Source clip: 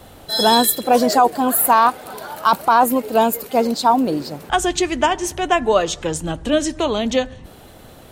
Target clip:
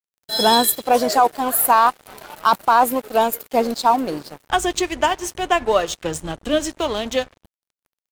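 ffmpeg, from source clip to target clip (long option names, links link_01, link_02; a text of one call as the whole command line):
ffmpeg -i in.wav -af "adynamicequalizer=threshold=0.0224:dfrequency=220:dqfactor=1:tfrequency=220:tqfactor=1:attack=5:release=100:ratio=0.375:range=3.5:mode=cutabove:tftype=bell,aeval=exprs='sgn(val(0))*max(abs(val(0))-0.0224,0)':channel_layout=same" out.wav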